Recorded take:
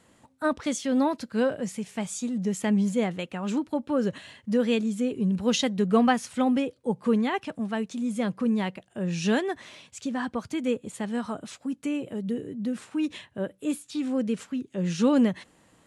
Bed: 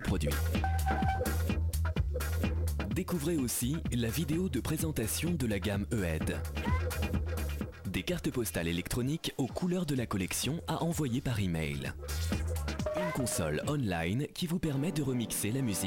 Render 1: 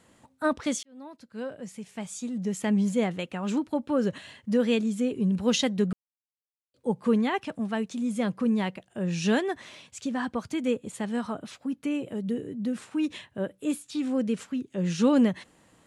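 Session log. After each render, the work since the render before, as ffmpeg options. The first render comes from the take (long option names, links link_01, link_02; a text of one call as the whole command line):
ffmpeg -i in.wav -filter_complex "[0:a]asettb=1/sr,asplit=3[link_01][link_02][link_03];[link_01]atrim=end=11.274[link_04];[link_02]atrim=start=11.27:end=11.91,asetpts=PTS-STARTPTS,afade=type=in:duration=0.004:curve=qsin,afade=type=out:start_time=0.636:duration=0.004:curve=qsin,equalizer=frequency=7700:width_type=o:width=0.77:gain=-7[link_05];[link_03]atrim=start=11.906[link_06];[link_04][link_05]acrossfade=duration=0.004:curve1=hsin:curve2=qsin[link_07];[link_07][link_06]acrossfade=duration=0.004:curve1=qsin:curve2=hsin,asplit=4[link_08][link_09][link_10][link_11];[link_08]atrim=end=0.83,asetpts=PTS-STARTPTS,afade=type=out:start_time=0.826:duration=0.004:curve=hsin[link_12];[link_09]atrim=start=0.83:end=5.93,asetpts=PTS-STARTPTS,afade=type=in:duration=2.12,afade=type=out:start_time=5.096:duration=0.004:curve=hsin[link_13];[link_10]atrim=start=5.93:end=6.74,asetpts=PTS-STARTPTS,volume=0[link_14];[link_11]atrim=start=6.74,asetpts=PTS-STARTPTS,afade=type=in:duration=0.004:curve=hsin[link_15];[link_12][link_13][link_14][link_15]concat=n=4:v=0:a=1" out.wav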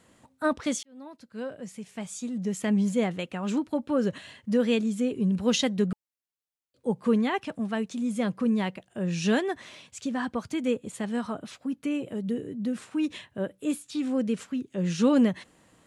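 ffmpeg -i in.wav -af "bandreject=frequency=860:width=23" out.wav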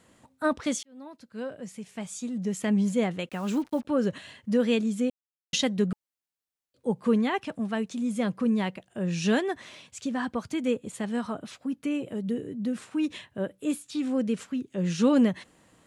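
ffmpeg -i in.wav -filter_complex "[0:a]asettb=1/sr,asplit=3[link_01][link_02][link_03];[link_01]atrim=end=3.294[link_04];[link_02]atrim=start=3.29:end=3.85,asetpts=PTS-STARTPTS,afade=type=in:duration=0.004:curve=qsin,afade=type=out:start_time=0.556:duration=0.004:curve=qsin,acrusher=bits=7:mix=0:aa=0.5[link_05];[link_03]atrim=start=3.846[link_06];[link_04][link_05]acrossfade=duration=0.004:curve1=hsin:curve2=qsin[link_07];[link_07][link_06]acrossfade=duration=0.004:curve1=qsin:curve2=hsin,asplit=3[link_08][link_09][link_10];[link_08]atrim=end=5.1,asetpts=PTS-STARTPTS,afade=type=out:start_time=5.096:duration=0.004:curve=hsin[link_11];[link_09]atrim=start=5.1:end=5.53,asetpts=PTS-STARTPTS,volume=0[link_12];[link_10]atrim=start=5.53,asetpts=PTS-STARTPTS,afade=type=in:duration=0.004:curve=hsin[link_13];[link_11][link_12][link_13]concat=n=3:v=0:a=1" out.wav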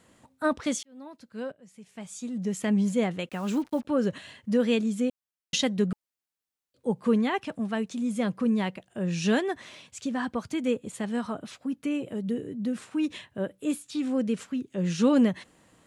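ffmpeg -i in.wav -filter_complex "[0:a]asplit=2[link_01][link_02];[link_01]atrim=end=1.52,asetpts=PTS-STARTPTS,afade=type=out:start_time=1.516:duration=0.004:curve=hsin:silence=0.0891251[link_03];[link_02]atrim=start=1.52,asetpts=PTS-STARTPTS,afade=type=in:duration=0.9:silence=0.0891251[link_04];[link_03][link_04]concat=n=2:v=0:a=1" out.wav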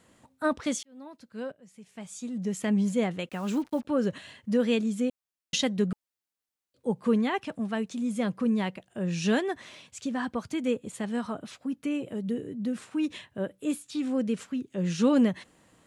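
ffmpeg -i in.wav -af "volume=-1dB" out.wav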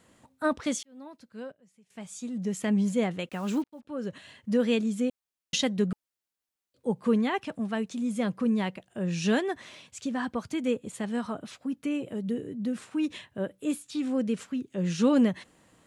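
ffmpeg -i in.wav -filter_complex "[0:a]asplit=3[link_01][link_02][link_03];[link_01]atrim=end=1.9,asetpts=PTS-STARTPTS,afade=type=out:start_time=1.07:duration=0.83:silence=0.16788[link_04];[link_02]atrim=start=1.9:end=3.64,asetpts=PTS-STARTPTS,afade=type=in:duration=0.004:curve=hsin:silence=0.16788,afade=type=out:start_time=1.736:duration=0.004:curve=hsin[link_05];[link_03]atrim=start=3.64,asetpts=PTS-STARTPTS,afade=type=in:duration=0.89[link_06];[link_04][link_05][link_06]concat=n=3:v=0:a=1" out.wav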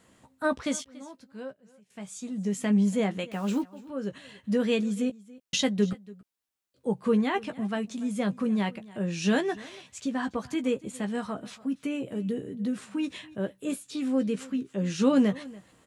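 ffmpeg -i in.wav -filter_complex "[0:a]asplit=2[link_01][link_02];[link_02]adelay=15,volume=-8dB[link_03];[link_01][link_03]amix=inputs=2:normalize=0,aecho=1:1:285:0.0891" out.wav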